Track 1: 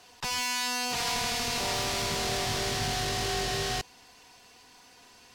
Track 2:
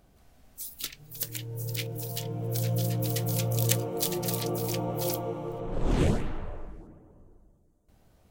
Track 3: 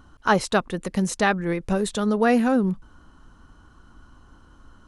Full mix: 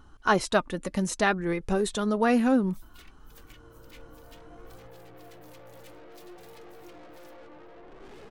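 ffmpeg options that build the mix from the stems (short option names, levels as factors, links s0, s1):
-filter_complex "[1:a]acrossover=split=260 2900:gain=0.158 1 0.178[s0][s1][s2];[s0][s1][s2]amix=inputs=3:normalize=0,aeval=exprs='(tanh(158*val(0)+0.55)-tanh(0.55))/158':c=same,adelay=2150,volume=1.06[s3];[2:a]volume=1.19[s4];[s3][s4]amix=inputs=2:normalize=0,flanger=delay=2.3:depth=1.3:regen=56:speed=0.61:shape=triangular"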